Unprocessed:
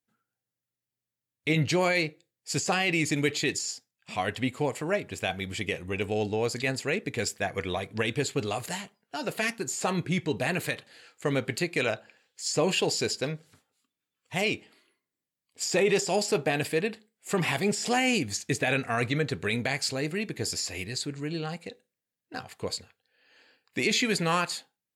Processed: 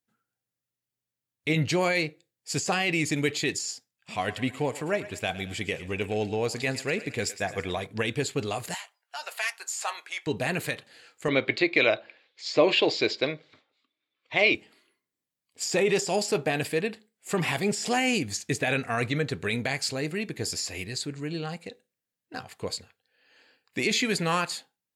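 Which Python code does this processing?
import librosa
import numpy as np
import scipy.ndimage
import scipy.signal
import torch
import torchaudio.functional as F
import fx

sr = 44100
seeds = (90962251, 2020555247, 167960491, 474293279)

y = fx.echo_thinned(x, sr, ms=110, feedback_pct=56, hz=500.0, wet_db=-14, at=(4.17, 7.85), fade=0.02)
y = fx.highpass(y, sr, hz=760.0, slope=24, at=(8.74, 10.27))
y = fx.cabinet(y, sr, low_hz=130.0, low_slope=12, high_hz=5000.0, hz=(180.0, 330.0, 600.0, 1100.0, 2200.0, 3700.0), db=(-10, 8, 8, 5, 10, 9), at=(11.28, 14.55))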